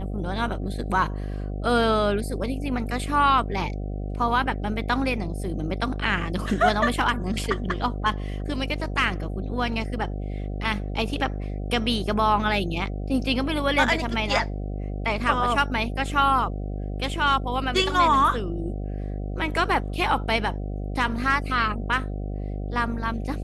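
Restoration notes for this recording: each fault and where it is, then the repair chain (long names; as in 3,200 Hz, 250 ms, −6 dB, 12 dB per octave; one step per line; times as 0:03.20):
mains buzz 50 Hz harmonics 15 −30 dBFS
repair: hum removal 50 Hz, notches 15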